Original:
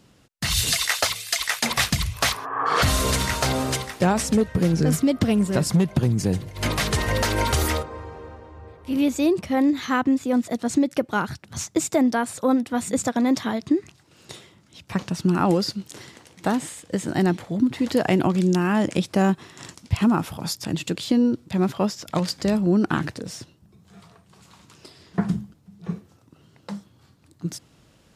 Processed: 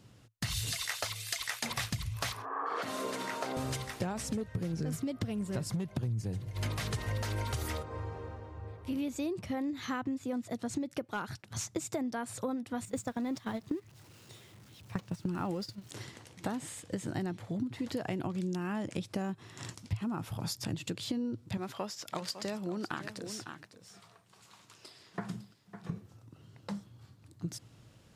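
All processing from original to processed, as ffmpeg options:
ffmpeg -i in.wav -filter_complex "[0:a]asettb=1/sr,asplit=3[link_01][link_02][link_03];[link_01]atrim=end=2.424[link_04];[link_02]atrim=start=2.42:end=3.57,asetpts=PTS-STARTPTS,afade=type=in:duration=0.004:curve=qsin,afade=type=out:start_time=1.146:duration=0.004:curve=qsin,highpass=frequency=250:width=0.5412,highpass=frequency=250:width=1.3066,highshelf=frequency=2200:gain=-12[link_05];[link_03]atrim=start=3.566[link_06];[link_04][link_05]acrossfade=duration=0.004:curve1=hsin:curve2=qsin[link_07];[link_07][link_06]acrossfade=duration=0.004:curve1=qsin:curve2=hsin,asettb=1/sr,asplit=3[link_08][link_09][link_10];[link_08]atrim=end=11.024[link_11];[link_09]atrim=start=11.02:end=11.64,asetpts=PTS-STARTPTS,afade=type=in:duration=0.004:curve=qsin,afade=type=out:start_time=0.616:duration=0.004:curve=qsin,agate=range=-33dB:threshold=-51dB:ratio=3:release=100:detection=peak,lowshelf=frequency=220:gain=-8.5,volume=16dB,asoftclip=hard,volume=-16dB[link_12];[link_10]atrim=start=11.636[link_13];[link_11][link_12]acrossfade=duration=0.004:curve1=hsin:curve2=qsin[link_14];[link_14][link_13]acrossfade=duration=0.004:curve1=qsin:curve2=hsin,asettb=1/sr,asplit=3[link_15][link_16][link_17];[link_15]atrim=end=12.854[link_18];[link_16]atrim=start=12.85:end=15.91,asetpts=PTS-STARTPTS,afade=type=in:duration=0.004:curve=qsin,afade=type=out:start_time=3.056:duration=0.004:curve=qsin,aeval=exprs='val(0)+0.5*0.0188*sgn(val(0))':channel_layout=same,agate=range=-14dB:threshold=-25dB:ratio=16:release=100:detection=peak[link_19];[link_17]atrim=start=15.906[link_20];[link_18][link_19]acrossfade=duration=0.004:curve1=hsin:curve2=qsin[link_21];[link_21][link_20]acrossfade=duration=0.004:curve1=qsin:curve2=hsin,asettb=1/sr,asplit=3[link_22][link_23][link_24];[link_22]atrim=end=21.574[link_25];[link_23]atrim=start=21.57:end=25.9,asetpts=PTS-STARTPTS,afade=type=in:duration=0.004:curve=qsin,afade=type=out:start_time=4.326:duration=0.004:curve=qsin,highpass=frequency=620:poles=1,aecho=1:1:554:0.211,atrim=end_sample=190953[link_26];[link_24]atrim=start=25.896[link_27];[link_25][link_26]acrossfade=duration=0.004:curve1=hsin:curve2=qsin[link_28];[link_28][link_27]acrossfade=duration=0.004:curve1=qsin:curve2=hsin,equalizer=frequency=110:width_type=o:width=0.38:gain=12.5,acompressor=threshold=-28dB:ratio=5,volume=-5dB" out.wav

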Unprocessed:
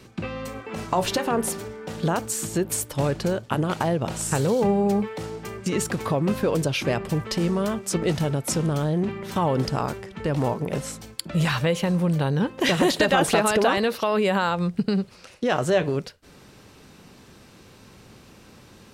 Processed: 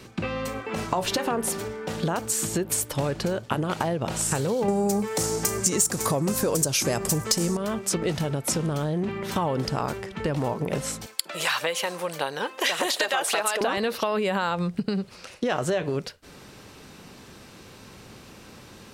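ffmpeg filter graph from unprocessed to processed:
ffmpeg -i in.wav -filter_complex "[0:a]asettb=1/sr,asplit=3[link_01][link_02][link_03];[link_01]atrim=end=4.684[link_04];[link_02]atrim=start=4.68:end=7.57,asetpts=PTS-STARTPTS,afade=type=in:duration=0.004:curve=qsin,afade=type=out:start_time=2.886:duration=0.004:curve=qsin,highshelf=frequency=4700:width_type=q:width=1.5:gain=13.5,acontrast=89[link_05];[link_03]atrim=start=7.566[link_06];[link_04][link_05]acrossfade=duration=0.004:curve1=hsin:curve2=qsin[link_07];[link_07][link_06]acrossfade=duration=0.004:curve1=qsin:curve2=hsin,asettb=1/sr,asplit=3[link_08][link_09][link_10];[link_08]atrim=end=11.064[link_11];[link_09]atrim=start=11.06:end=13.61,asetpts=PTS-STARTPTS,afade=type=in:duration=0.004:curve=qsin,afade=type=out:start_time=2.546:duration=0.004:curve=qsin,highpass=590,highshelf=frequency=5300:gain=4.5,aphaser=in_gain=1:out_gain=1:delay=3.1:decay=0.25:speed=1.7:type=triangular[link_12];[link_10]atrim=start=13.606[link_13];[link_11][link_12]acrossfade=duration=0.004:curve1=hsin:curve2=qsin[link_14];[link_14][link_13]acrossfade=duration=0.004:curve1=qsin:curve2=hsin,acompressor=threshold=-25dB:ratio=6,lowshelf=frequency=330:gain=-3,volume=4dB" out.wav

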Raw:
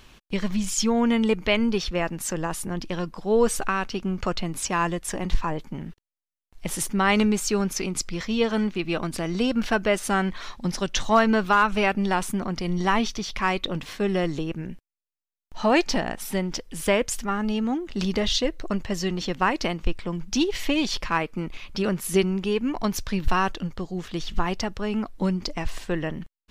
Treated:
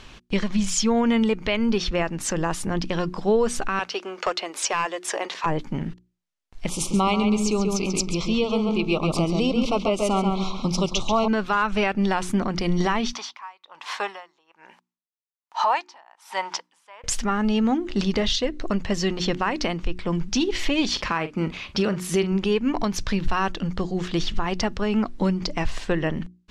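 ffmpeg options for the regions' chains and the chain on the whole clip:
ffmpeg -i in.wav -filter_complex "[0:a]asettb=1/sr,asplit=3[link_01][link_02][link_03];[link_01]atrim=end=3.794[link_04];[link_02]atrim=start=3.79:end=5.46,asetpts=PTS-STARTPTS,afade=type=in:duration=0.004:curve=qsin,afade=type=out:start_time=1.666:duration=0.004:curve=qsin,highpass=frequency=420:width=0.5412,highpass=frequency=420:width=1.3066,aeval=exprs='clip(val(0),-1,0.0841)':channel_layout=same[link_05];[link_03]atrim=start=5.456[link_06];[link_04][link_05]acrossfade=duration=0.004:curve1=hsin:curve2=qsin[link_07];[link_07][link_06]acrossfade=duration=0.004:curve1=qsin:curve2=hsin,asettb=1/sr,asplit=3[link_08][link_09][link_10];[link_08]atrim=end=6.694[link_11];[link_09]atrim=start=6.69:end=11.28,asetpts=PTS-STARTPTS,afade=type=in:duration=0.004:curve=qsin,afade=type=out:start_time=4.586:duration=0.004:curve=qsin,asuperstop=centerf=1700:order=8:qfactor=1.8,asplit=2[link_12][link_13];[link_13]adelay=137,lowpass=frequency=3400:poles=1,volume=-4.5dB,asplit=2[link_14][link_15];[link_15]adelay=137,lowpass=frequency=3400:poles=1,volume=0.29,asplit=2[link_16][link_17];[link_17]adelay=137,lowpass=frequency=3400:poles=1,volume=0.29,asplit=2[link_18][link_19];[link_19]adelay=137,lowpass=frequency=3400:poles=1,volume=0.29[link_20];[link_12][link_14][link_16][link_18][link_20]amix=inputs=5:normalize=0,atrim=end_sample=202419[link_21];[link_10]atrim=start=11.276[link_22];[link_11][link_21]acrossfade=duration=0.004:curve1=hsin:curve2=qsin[link_23];[link_23][link_22]acrossfade=duration=0.004:curve1=qsin:curve2=hsin,asettb=1/sr,asplit=3[link_24][link_25][link_26];[link_24]atrim=end=13.134[link_27];[link_25]atrim=start=13.13:end=17.04,asetpts=PTS-STARTPTS,afade=type=in:duration=0.004:curve=qsin,afade=type=out:start_time=3.906:duration=0.004:curve=qsin,highpass=frequency=930:width_type=q:width=4.4,aeval=exprs='val(0)*pow(10,-33*(0.5-0.5*cos(2*PI*1.2*n/s))/20)':channel_layout=same[link_28];[link_26]atrim=start=17.036[link_29];[link_27][link_28]acrossfade=duration=0.004:curve1=hsin:curve2=qsin[link_30];[link_30][link_29]acrossfade=duration=0.004:curve1=qsin:curve2=hsin,asettb=1/sr,asplit=3[link_31][link_32][link_33];[link_31]atrim=end=20.894[link_34];[link_32]atrim=start=20.89:end=22.32,asetpts=PTS-STARTPTS,afade=type=in:duration=0.004:curve=qsin,afade=type=out:start_time=1.426:duration=0.004:curve=qsin,highpass=47,asplit=2[link_35][link_36];[link_36]adelay=44,volume=-13.5dB[link_37];[link_35][link_37]amix=inputs=2:normalize=0,atrim=end_sample=63063[link_38];[link_33]atrim=start=22.316[link_39];[link_34][link_38]acrossfade=duration=0.004:curve1=hsin:curve2=qsin[link_40];[link_40][link_39]acrossfade=duration=0.004:curve1=qsin:curve2=hsin,lowpass=7200,bandreject=frequency=60:width_type=h:width=6,bandreject=frequency=120:width_type=h:width=6,bandreject=frequency=180:width_type=h:width=6,bandreject=frequency=240:width_type=h:width=6,bandreject=frequency=300:width_type=h:width=6,bandreject=frequency=360:width_type=h:width=6,alimiter=limit=-19dB:level=0:latency=1:release=285,volume=6.5dB" out.wav

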